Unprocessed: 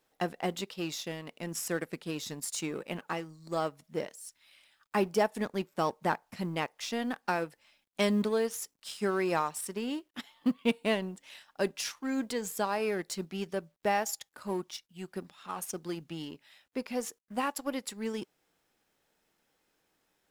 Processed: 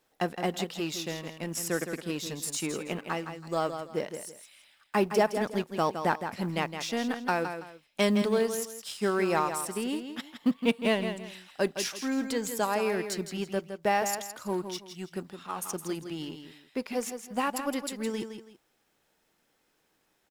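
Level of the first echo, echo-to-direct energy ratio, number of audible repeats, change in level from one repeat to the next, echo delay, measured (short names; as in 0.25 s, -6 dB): -8.5 dB, -8.0 dB, 2, -11.0 dB, 0.164 s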